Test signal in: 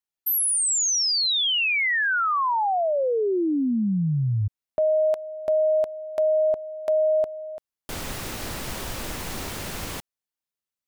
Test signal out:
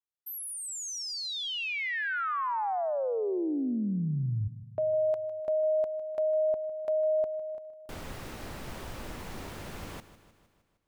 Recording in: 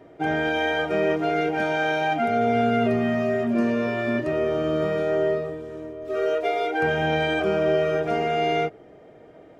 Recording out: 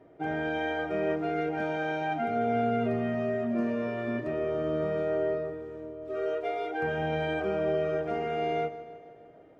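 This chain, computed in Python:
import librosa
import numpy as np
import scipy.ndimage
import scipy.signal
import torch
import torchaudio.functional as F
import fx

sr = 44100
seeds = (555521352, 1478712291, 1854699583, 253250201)

y = fx.high_shelf(x, sr, hz=3100.0, db=-9.5)
y = fx.echo_feedback(y, sr, ms=154, feedback_pct=58, wet_db=-15)
y = y * librosa.db_to_amplitude(-7.0)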